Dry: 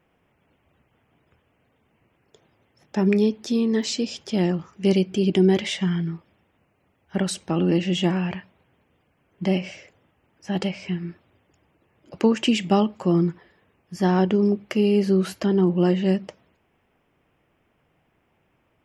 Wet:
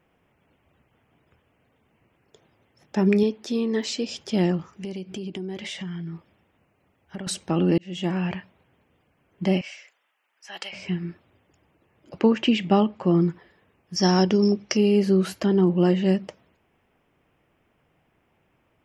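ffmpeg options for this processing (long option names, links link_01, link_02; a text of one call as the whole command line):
ffmpeg -i in.wav -filter_complex "[0:a]asettb=1/sr,asplit=3[link_01][link_02][link_03];[link_01]atrim=end=3.234[link_04];[link_02]atrim=start=3.23:end=4.09,asetpts=PTS-STARTPTS,afade=type=in:duration=0.004:curve=qsin,afade=type=out:start_time=0.856:duration=0.004:curve=qsin,bass=frequency=250:gain=-7,treble=frequency=4000:gain=-4[link_05];[link_03]atrim=start=4.086[link_06];[link_04][link_05]acrossfade=duration=0.004:curve1=hsin:curve2=qsin[link_07];[link_07][link_06]acrossfade=duration=0.004:curve1=qsin:curve2=hsin,asettb=1/sr,asplit=3[link_08][link_09][link_10];[link_08]atrim=end=4.734[link_11];[link_09]atrim=start=4.73:end=7.27,asetpts=PTS-STARTPTS,afade=type=in:duration=0.004:curve=qsin,afade=type=out:start_time=2.536:duration=0.004:curve=qsin,acompressor=threshold=-31dB:ratio=5:attack=3.2:release=140:knee=1:detection=peak[link_12];[link_10]atrim=start=7.266[link_13];[link_11][link_12]acrossfade=duration=0.004:curve1=hsin:curve2=qsin[link_14];[link_14][link_13]acrossfade=duration=0.004:curve1=qsin:curve2=hsin,asettb=1/sr,asplit=3[link_15][link_16][link_17];[link_15]atrim=end=9.614[link_18];[link_16]atrim=start=9.61:end=10.73,asetpts=PTS-STARTPTS,afade=type=in:duration=0.004:curve=qsin,afade=type=out:start_time=1.116:duration=0.004:curve=qsin,highpass=1200[link_19];[link_17]atrim=start=10.726[link_20];[link_18][link_19]acrossfade=duration=0.004:curve1=hsin:curve2=qsin[link_21];[link_21][link_20]acrossfade=duration=0.004:curve1=qsin:curve2=hsin,asettb=1/sr,asplit=3[link_22][link_23][link_24];[link_22]atrim=end=12.194[link_25];[link_23]atrim=start=12.19:end=13.21,asetpts=PTS-STARTPTS,afade=type=in:duration=0.004:curve=qsin,afade=type=out:start_time=1.016:duration=0.004:curve=qsin,lowpass=3800[link_26];[link_24]atrim=start=13.206[link_27];[link_25][link_26]acrossfade=duration=0.004:curve1=hsin:curve2=qsin[link_28];[link_28][link_27]acrossfade=duration=0.004:curve1=qsin:curve2=hsin,asettb=1/sr,asplit=3[link_29][link_30][link_31];[link_29]atrim=end=13.964[link_32];[link_30]atrim=start=13.96:end=14.77,asetpts=PTS-STARTPTS,afade=type=in:duration=0.004:curve=qsin,afade=type=out:start_time=0.806:duration=0.004:curve=qsin,lowpass=frequency=5600:width_type=q:width=15[link_33];[link_31]atrim=start=14.766[link_34];[link_32][link_33]acrossfade=duration=0.004:curve1=hsin:curve2=qsin[link_35];[link_35][link_34]acrossfade=duration=0.004:curve1=qsin:curve2=hsin,asplit=2[link_36][link_37];[link_36]atrim=end=7.78,asetpts=PTS-STARTPTS,afade=type=out:start_time=7.776:duration=0.004:curve=hsin[link_38];[link_37]atrim=start=7.78,asetpts=PTS-STARTPTS,afade=type=in:duration=0.49[link_39];[link_38][link_39]concat=n=2:v=0:a=1" out.wav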